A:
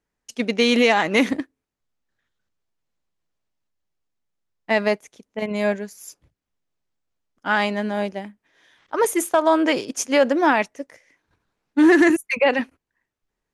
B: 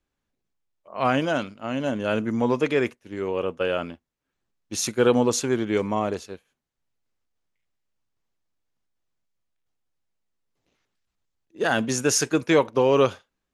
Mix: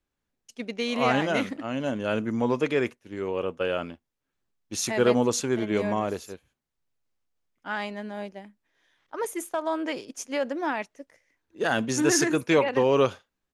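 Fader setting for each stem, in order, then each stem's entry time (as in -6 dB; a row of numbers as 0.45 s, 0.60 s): -11.0 dB, -2.5 dB; 0.20 s, 0.00 s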